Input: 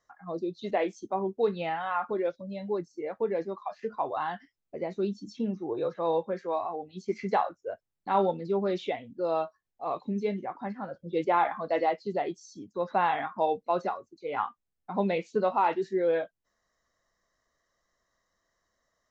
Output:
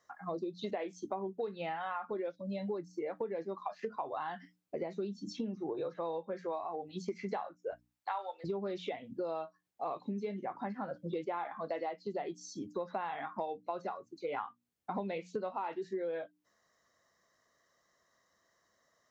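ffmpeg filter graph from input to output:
-filter_complex "[0:a]asettb=1/sr,asplit=3[s0][s1][s2];[s0]atrim=end=7.714[s3];[s1]atrim=start=7.71:end=8.44,asetpts=PTS-STARTPTS,afade=t=in:d=0.004:c=qsin,afade=t=out:st=0.726:d=0.004:c=qsin,highpass=f=680:w=0.5412,highpass=f=680:w=1.3066,aeval=exprs='val(0)+0.00282*(sin(2*PI*60*n/s)+sin(2*PI*2*60*n/s)/2+sin(2*PI*3*60*n/s)/3+sin(2*PI*4*60*n/s)/4+sin(2*PI*5*60*n/s)/5)':c=same[s4];[s2]atrim=start=8.436[s5];[s3][s4]acrossfade=d=0.004:c1=hsin:c2=qsin[s6];[s6][s5]acrossfade=d=0.004:c1=qsin:c2=hsin,highpass=99,bandreject=f=60:t=h:w=6,bandreject=f=120:t=h:w=6,bandreject=f=180:t=h:w=6,bandreject=f=240:t=h:w=6,bandreject=f=300:t=h:w=6,acompressor=threshold=0.0126:ratio=10,volume=1.5"

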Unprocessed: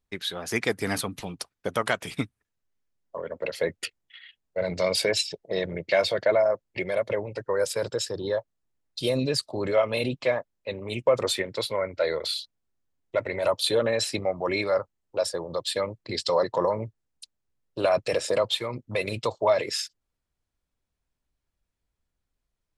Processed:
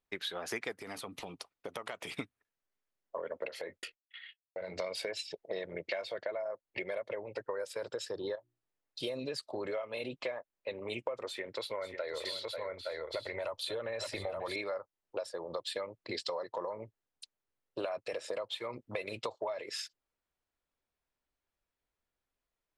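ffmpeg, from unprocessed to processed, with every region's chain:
-filter_complex "[0:a]asettb=1/sr,asplit=3[s0][s1][s2];[s0]atrim=end=0.824[s3];[s1]atrim=start=0.82:end=2.09,asetpts=PTS-STARTPTS,afade=t=in:d=0.004:c=qsin,afade=t=out:st=1.266:d=0.004:c=qsin,equalizer=f=1600:t=o:w=0.28:g=-7.5,acompressor=threshold=0.02:ratio=6:attack=3.2:release=140:knee=1:detection=peak[s4];[s2]atrim=start=2.086[s5];[s3][s4]acrossfade=d=0.004:c1=hsin:c2=qsin[s6];[s6][s5]acrossfade=d=0.004:c1=qsin:c2=hsin,asettb=1/sr,asplit=3[s7][s8][s9];[s7]atrim=end=3.484[s10];[s8]atrim=start=3.48:end=4.79,asetpts=PTS-STARTPTS,afade=t=in:d=0.004:c=qsin,afade=t=out:st=1.306:d=0.004:c=qsin,agate=range=0.0224:threshold=0.00316:ratio=3:release=100:detection=peak,asplit=2[s11][s12];[s12]adelay=21,volume=0.282[s13];[s11][s13]amix=inputs=2:normalize=0,atrim=end_sample=57771,acompressor=threshold=0.02:ratio=6:attack=3.2:release=140:knee=1:detection=peak[s14];[s9]atrim=start=4.786[s15];[s10][s14]acrossfade=d=0.004:c1=hsin:c2=qsin[s16];[s16][s15]acrossfade=d=0.004:c1=qsin:c2=hsin,asettb=1/sr,asplit=3[s17][s18][s19];[s17]atrim=end=8.354[s20];[s18]atrim=start=8.35:end=9,asetpts=PTS-STARTPTS,afade=t=in:d=0.004:c=qsin,afade=t=out:st=0.646:d=0.004:c=qsin,bandreject=f=60:t=h:w=6,bandreject=f=120:t=h:w=6,bandreject=f=180:t=h:w=6,bandreject=f=240:t=h:w=6,bandreject=f=300:t=h:w=6,bandreject=f=360:t=h:w=6,acompressor=threshold=0.0178:ratio=5:attack=3.2:release=140:knee=1:detection=peak[s21];[s19]atrim=start=8.996[s22];[s20][s21]acrossfade=d=0.004:c1=hsin:c2=qsin[s23];[s23][s22]acrossfade=d=0.004:c1=qsin:c2=hsin,asettb=1/sr,asplit=3[s24][s25][s26];[s24]atrim=end=11.274[s27];[s25]atrim=start=11.27:end=14.56,asetpts=PTS-STARTPTS,afade=t=in:d=0.004:c=qsin,afade=t=out:st=3.286:d=0.004:c=qsin,aecho=1:1:538|859|870:0.188|0.1|0.422,atrim=end_sample=145089,acompressor=threshold=0.0282:ratio=1.5:attack=3.2:release=140:knee=1:detection=peak,asubboost=boost=7:cutoff=97[s28];[s26]atrim=start=14.556[s29];[s27][s28]acrossfade=d=0.004:c1=hsin:c2=qsin[s30];[s30][s29]acrossfade=d=0.004:c1=qsin:c2=hsin,bass=f=250:g=-12,treble=f=4000:g=-7,acompressor=threshold=0.0224:ratio=12,volume=0.891"

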